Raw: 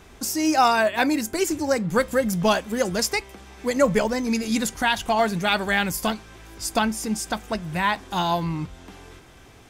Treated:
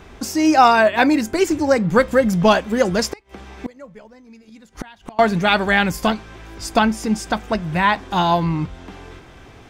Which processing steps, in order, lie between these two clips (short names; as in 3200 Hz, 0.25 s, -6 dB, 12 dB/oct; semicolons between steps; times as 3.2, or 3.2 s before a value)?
bell 12000 Hz -13 dB 1.6 oct; 3.07–5.19 flipped gate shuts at -21 dBFS, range -27 dB; gain +6.5 dB